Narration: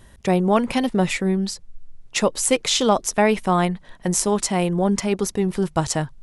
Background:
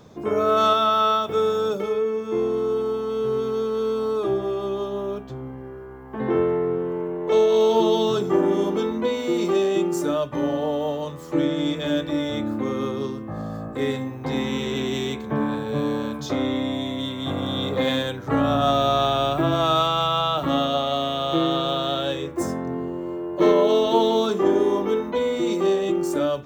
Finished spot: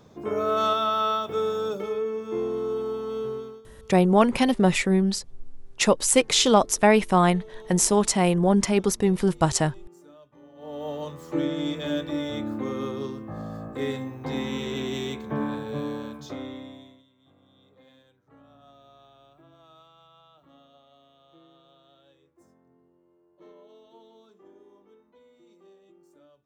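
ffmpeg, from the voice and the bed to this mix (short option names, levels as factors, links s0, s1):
-filter_complex "[0:a]adelay=3650,volume=1[s0];[1:a]volume=7.94,afade=t=out:st=3.17:d=0.45:silence=0.0749894,afade=t=in:st=10.55:d=0.47:silence=0.0707946,afade=t=out:st=15.46:d=1.58:silence=0.0316228[s1];[s0][s1]amix=inputs=2:normalize=0"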